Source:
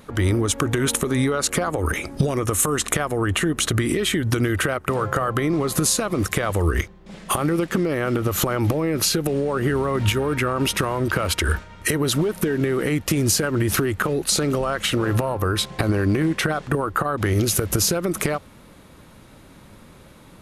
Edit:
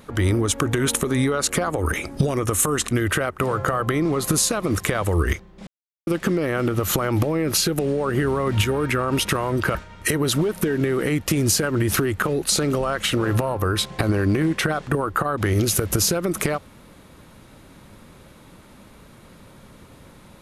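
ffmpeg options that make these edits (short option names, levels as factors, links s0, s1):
-filter_complex "[0:a]asplit=5[s0][s1][s2][s3][s4];[s0]atrim=end=2.912[s5];[s1]atrim=start=4.388:end=7.15,asetpts=PTS-STARTPTS,afade=t=out:st=2.758:d=0.004:c=hsin[s6];[s2]atrim=start=7.15:end=7.55,asetpts=PTS-STARTPTS,volume=0[s7];[s3]atrim=start=7.55:end=11.232,asetpts=PTS-STARTPTS,afade=t=in:d=0.004:c=hsin[s8];[s4]atrim=start=11.548[s9];[s6][s7][s8]concat=n=3:v=0:a=1[s10];[s5][s10]acrossfade=d=0.004:c1=hsin:c2=hsin[s11];[s11][s9]acrossfade=d=0.004:c1=hsin:c2=hsin"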